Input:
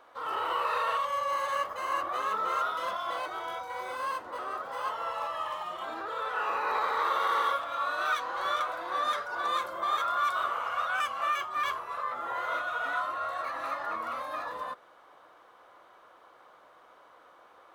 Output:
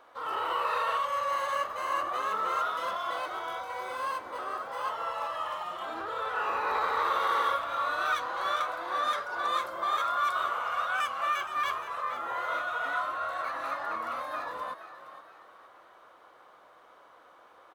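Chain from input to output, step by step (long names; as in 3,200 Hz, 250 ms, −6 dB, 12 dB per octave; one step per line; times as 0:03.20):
0:05.95–0:08.27: low-shelf EQ 150 Hz +9 dB
echo with shifted repeats 469 ms, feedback 40%, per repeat +47 Hz, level −12.5 dB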